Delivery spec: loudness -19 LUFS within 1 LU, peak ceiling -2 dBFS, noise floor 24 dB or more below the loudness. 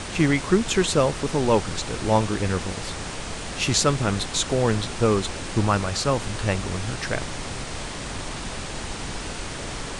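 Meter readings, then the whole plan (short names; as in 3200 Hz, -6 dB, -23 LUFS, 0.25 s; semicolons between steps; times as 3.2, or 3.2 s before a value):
noise floor -33 dBFS; noise floor target -49 dBFS; loudness -24.5 LUFS; peak -4.0 dBFS; loudness target -19.0 LUFS
-> noise print and reduce 16 dB; gain +5.5 dB; limiter -2 dBFS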